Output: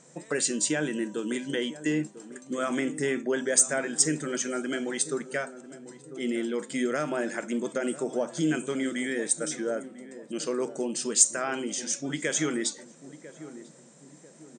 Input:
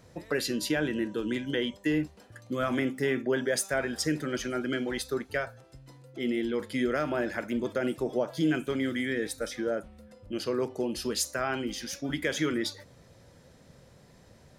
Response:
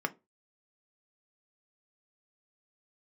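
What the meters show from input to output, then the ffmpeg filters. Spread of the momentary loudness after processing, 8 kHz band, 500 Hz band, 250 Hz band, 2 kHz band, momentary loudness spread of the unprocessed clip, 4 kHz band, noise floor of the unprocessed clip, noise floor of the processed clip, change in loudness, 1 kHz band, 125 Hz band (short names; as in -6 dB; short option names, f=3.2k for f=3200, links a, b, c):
20 LU, +12.0 dB, 0.0 dB, 0.0 dB, 0.0 dB, 6 LU, 0.0 dB, -57 dBFS, -53 dBFS, +2.5 dB, 0.0 dB, -2.0 dB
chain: -filter_complex "[0:a]afftfilt=real='re*between(b*sr/4096,130,8900)':imag='im*between(b*sr/4096,130,8900)':win_size=4096:overlap=0.75,aexciter=amount=7.4:drive=6.5:freq=6.7k,asplit=2[a][b];[b]adelay=996,lowpass=f=820:p=1,volume=-13.5dB,asplit=2[c][d];[d]adelay=996,lowpass=f=820:p=1,volume=0.47,asplit=2[e][f];[f]adelay=996,lowpass=f=820:p=1,volume=0.47,asplit=2[g][h];[h]adelay=996,lowpass=f=820:p=1,volume=0.47,asplit=2[i][j];[j]adelay=996,lowpass=f=820:p=1,volume=0.47[k];[a][c][e][g][i][k]amix=inputs=6:normalize=0"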